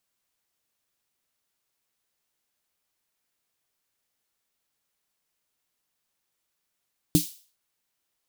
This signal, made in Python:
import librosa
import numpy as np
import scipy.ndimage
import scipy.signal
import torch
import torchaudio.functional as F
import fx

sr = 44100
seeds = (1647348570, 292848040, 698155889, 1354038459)

y = fx.drum_snare(sr, seeds[0], length_s=0.41, hz=170.0, second_hz=300.0, noise_db=-9, noise_from_hz=3300.0, decay_s=0.13, noise_decay_s=0.42)